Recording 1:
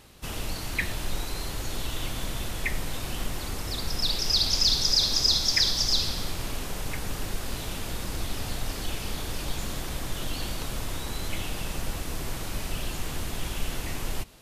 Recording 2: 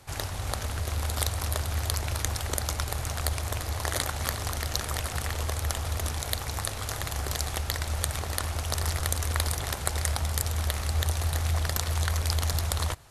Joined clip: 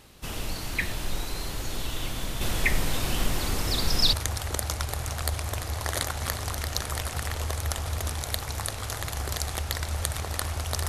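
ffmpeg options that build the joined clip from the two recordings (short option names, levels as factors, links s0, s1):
-filter_complex "[0:a]asettb=1/sr,asplit=3[s0][s1][s2];[s0]atrim=end=2.414[s3];[s1]atrim=start=2.41:end=4.13,asetpts=PTS-STARTPTS,afade=t=in:d=0.004:c=qsin,afade=t=out:st=1.716:d=0.004:c=qsin,acontrast=31[s4];[s2]atrim=start=4.126[s5];[s3][s4]acrossfade=d=0.004:c1=hsin:c2=qsin[s6];[s6][s5]acrossfade=d=0.004:c1=qsin:c2=hsin,apad=whole_dur=10.88,atrim=end=10.88,atrim=end=4.132[s7];[1:a]atrim=start=2.118:end=8.87[s8];[s7][s8]acrossfade=d=0.004:c1=hsin:c2=hsin"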